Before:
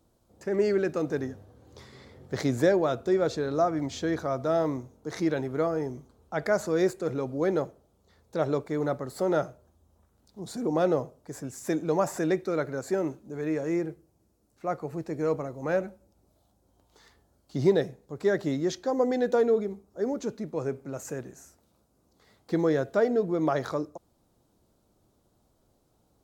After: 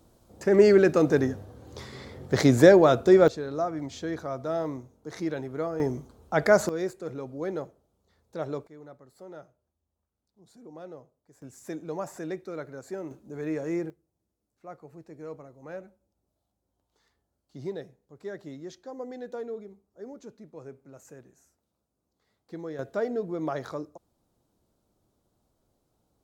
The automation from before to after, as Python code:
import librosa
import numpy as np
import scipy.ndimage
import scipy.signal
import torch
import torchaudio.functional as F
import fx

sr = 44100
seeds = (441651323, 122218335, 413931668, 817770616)

y = fx.gain(x, sr, db=fx.steps((0.0, 7.5), (3.28, -4.0), (5.8, 6.0), (6.69, -6.0), (8.67, -19.0), (11.42, -8.5), (13.11, -2.0), (13.9, -13.0), (22.79, -5.0)))